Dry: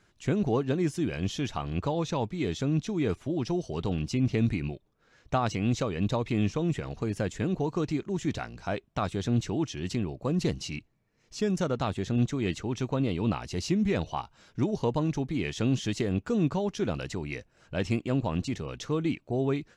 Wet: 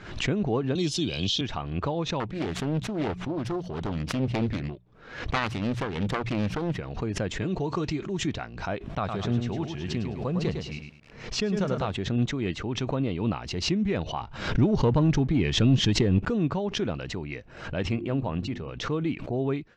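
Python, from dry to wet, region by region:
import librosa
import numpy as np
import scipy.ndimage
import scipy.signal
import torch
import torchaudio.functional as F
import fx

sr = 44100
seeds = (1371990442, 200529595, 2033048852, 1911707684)

y = fx.chain(x, sr, fx.high_shelf_res(hz=2600.0, db=13.0, q=3.0),
    fx.band_squash(depth_pct=40), at=(0.75, 1.41))
y = fx.chain(y, sr, fx.self_delay(depth_ms=0.86),
    fx.hum_notches(base_hz=60, count=3), at=(2.2, 6.79))
y = fx.chain(y, sr, fx.high_shelf(hz=3600.0, db=10.0),
    fx.notch_comb(f0_hz=250.0), at=(7.41, 8.27))
y = fx.chain(y, sr, fx.peak_eq(hz=300.0, db=-8.5, octaves=0.26),
    fx.echo_crushed(ms=105, feedback_pct=35, bits=9, wet_db=-5.5), at=(8.98, 11.91))
y = fx.chain(y, sr, fx.low_shelf(hz=200.0, db=7.5),
    fx.leveller(passes=1), at=(14.21, 16.3))
y = fx.chain(y, sr, fx.high_shelf(hz=4900.0, db=-8.0),
    fx.hum_notches(base_hz=50, count=7), at=(17.91, 18.76))
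y = scipy.signal.sosfilt(scipy.signal.butter(2, 3600.0, 'lowpass', fs=sr, output='sos'), y)
y = fx.pre_swell(y, sr, db_per_s=81.0)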